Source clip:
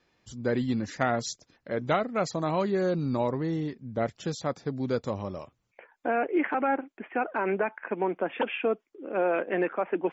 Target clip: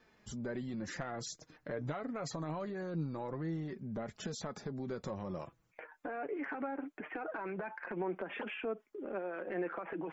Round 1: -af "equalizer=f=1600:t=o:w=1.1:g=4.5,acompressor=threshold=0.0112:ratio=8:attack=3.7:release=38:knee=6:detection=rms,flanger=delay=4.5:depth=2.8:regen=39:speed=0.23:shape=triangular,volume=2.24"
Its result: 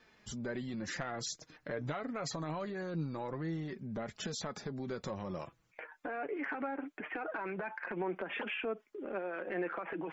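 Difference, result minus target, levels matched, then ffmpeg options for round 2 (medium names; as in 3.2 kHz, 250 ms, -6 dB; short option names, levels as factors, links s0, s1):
4 kHz band +4.0 dB
-af "equalizer=f=1600:t=o:w=1.1:g=4.5,acompressor=threshold=0.0112:ratio=8:attack=3.7:release=38:knee=6:detection=rms,equalizer=f=3400:t=o:w=2.6:g=-5.5,flanger=delay=4.5:depth=2.8:regen=39:speed=0.23:shape=triangular,volume=2.24"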